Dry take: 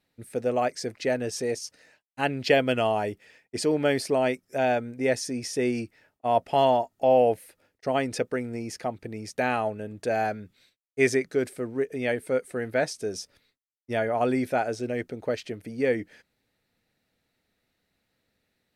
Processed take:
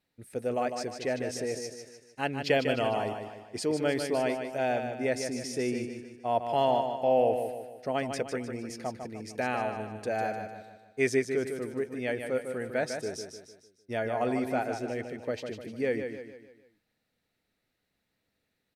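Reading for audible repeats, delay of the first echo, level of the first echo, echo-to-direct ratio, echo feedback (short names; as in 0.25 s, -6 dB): 5, 0.151 s, -7.0 dB, -6.0 dB, 45%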